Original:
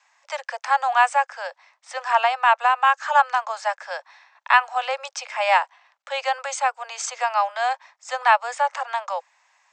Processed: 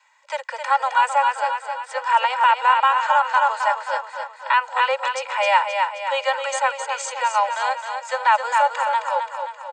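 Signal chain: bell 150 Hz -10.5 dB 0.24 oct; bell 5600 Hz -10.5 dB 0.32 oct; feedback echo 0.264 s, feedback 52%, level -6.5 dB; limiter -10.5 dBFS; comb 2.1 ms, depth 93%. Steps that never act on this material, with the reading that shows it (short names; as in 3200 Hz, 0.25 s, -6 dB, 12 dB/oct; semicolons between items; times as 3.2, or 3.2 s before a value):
bell 150 Hz: input band starts at 450 Hz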